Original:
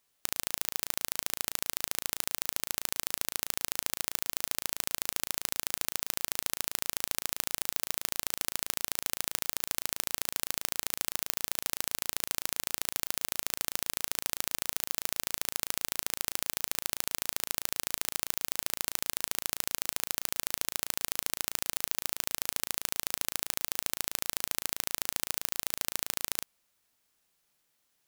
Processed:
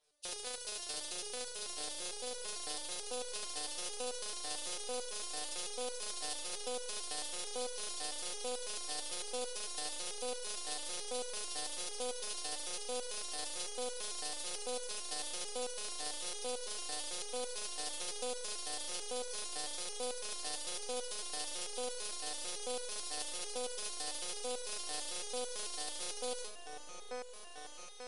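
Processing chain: nonlinear frequency compression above 2500 Hz 1.5:1; graphic EQ 125/250/500/1000/2000/8000 Hz -9/-11/+8/-6/-8/-11 dB; limiter -33 dBFS, peak gain reduction 10.5 dB; repeats that get brighter 0.702 s, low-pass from 750 Hz, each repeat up 1 oct, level -3 dB; stepped resonator 9 Hz 150–490 Hz; gain +17 dB

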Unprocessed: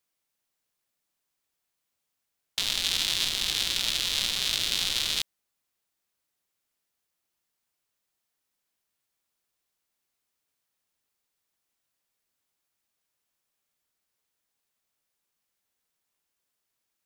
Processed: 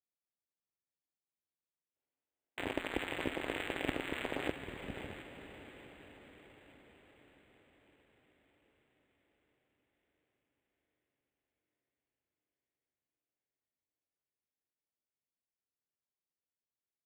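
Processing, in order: half-waves squared off; gate -13 dBFS, range -28 dB; HPF 45 Hz; bell 1300 Hz -14.5 dB 0.87 oct; spectral gain 1.96–4.51, 240–9900 Hz +11 dB; air absorption 290 m; on a send: diffused feedback echo 0.553 s, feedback 63%, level -11.5 dB; on the sum: decimation joined by straight lines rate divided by 8×; gain +11 dB

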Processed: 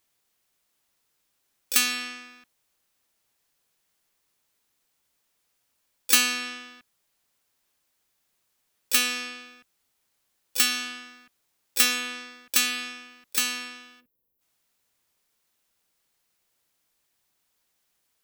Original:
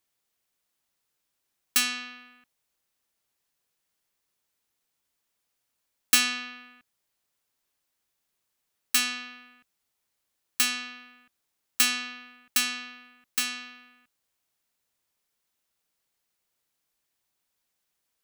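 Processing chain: spectral gain 14.01–14.41, 540–11000 Hz -20 dB; in parallel at -2 dB: compressor, threshold -32 dBFS, peak gain reduction 16 dB; on the sum: harmoniser +5 st -13 dB, +12 st -7 dB

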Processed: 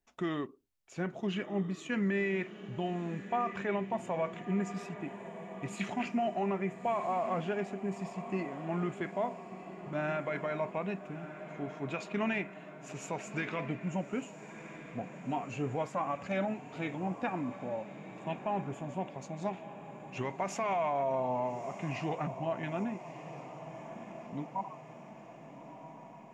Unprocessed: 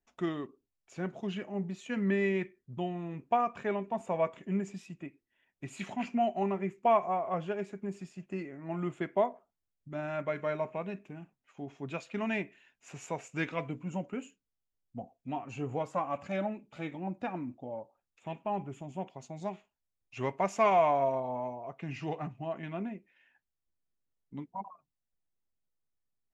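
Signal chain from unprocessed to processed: dynamic EQ 1900 Hz, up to +4 dB, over -45 dBFS, Q 0.76; limiter -26.5 dBFS, peak gain reduction 13.5 dB; diffused feedback echo 1.311 s, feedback 61%, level -12 dB; gain +2 dB

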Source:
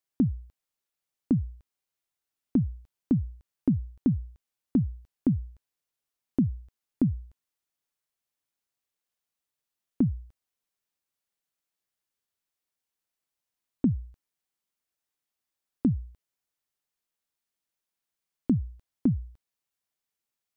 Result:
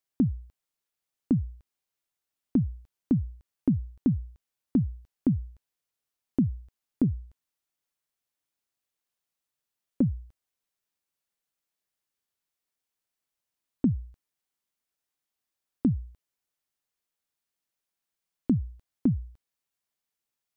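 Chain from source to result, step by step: 7.03–10.02 Doppler distortion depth 0.15 ms

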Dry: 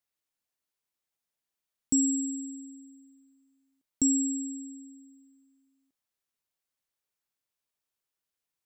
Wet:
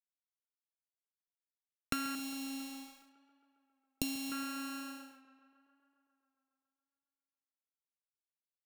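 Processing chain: sample sorter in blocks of 32 samples; 2.15–4.32 Chebyshev band-stop 670–2900 Hz, order 3; compressor 6:1, threshold -43 dBFS, peak gain reduction 20 dB; crossover distortion -53.5 dBFS; tape echo 0.137 s, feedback 78%, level -17 dB, low-pass 4100 Hz; gain +8.5 dB

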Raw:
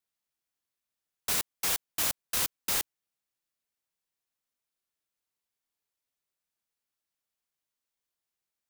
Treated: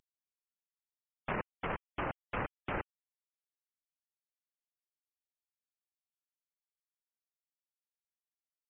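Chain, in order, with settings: CVSD 16 kbps; treble ducked by the level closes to 1800 Hz, closed at -37 dBFS; spectral gate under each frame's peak -25 dB strong; gain +4 dB

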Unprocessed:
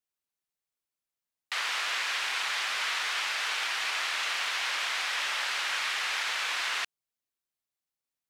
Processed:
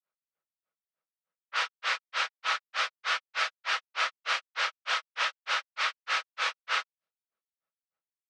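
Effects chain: grains 0.168 s, grains 3.3/s, pitch spread up and down by 0 st; comb 6.2 ms, depth 32%; in parallel at -2 dB: limiter -28 dBFS, peak gain reduction 7.5 dB; on the sum: speaker cabinet 130–7100 Hz, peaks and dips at 130 Hz -3 dB, 300 Hz -8 dB, 550 Hz +9 dB, 1300 Hz +8 dB, 7100 Hz -4 dB; low-pass opened by the level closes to 2100 Hz, open at -28 dBFS

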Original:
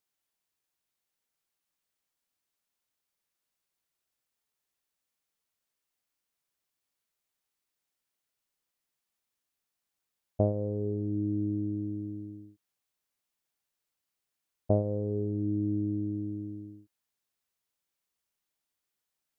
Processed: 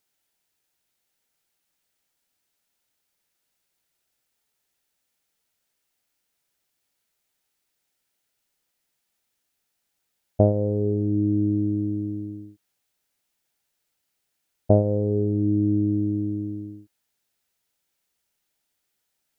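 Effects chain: notch 1100 Hz, Q 6.6; gain +8.5 dB

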